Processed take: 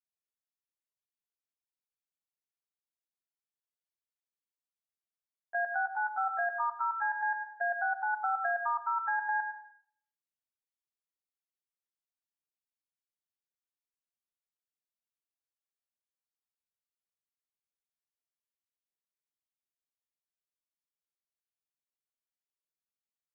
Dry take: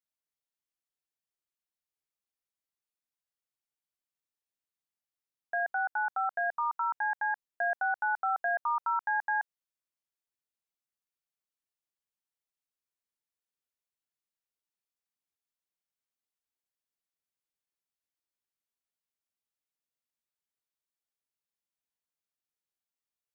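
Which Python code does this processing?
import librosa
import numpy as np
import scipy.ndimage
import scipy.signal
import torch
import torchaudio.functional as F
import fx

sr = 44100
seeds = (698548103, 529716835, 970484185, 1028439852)

y = fx.level_steps(x, sr, step_db=15)
y = fx.rev_plate(y, sr, seeds[0], rt60_s=0.59, hf_ratio=1.0, predelay_ms=85, drr_db=8.5)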